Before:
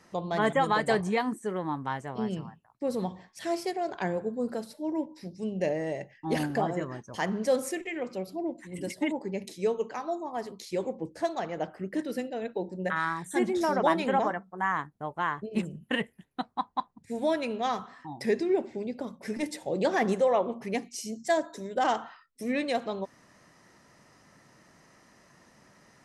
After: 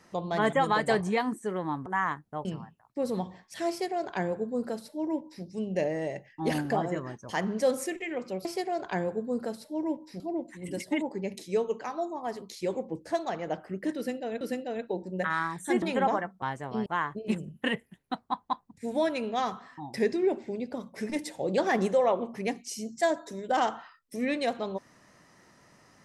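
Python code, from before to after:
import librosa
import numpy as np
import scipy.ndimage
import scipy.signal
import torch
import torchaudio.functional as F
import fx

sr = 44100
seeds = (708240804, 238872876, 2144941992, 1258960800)

y = fx.edit(x, sr, fx.swap(start_s=1.86, length_s=0.44, other_s=14.54, other_length_s=0.59),
    fx.duplicate(start_s=3.54, length_s=1.75, to_s=8.3),
    fx.repeat(start_s=12.07, length_s=0.44, count=2),
    fx.cut(start_s=13.48, length_s=0.46), tone=tone)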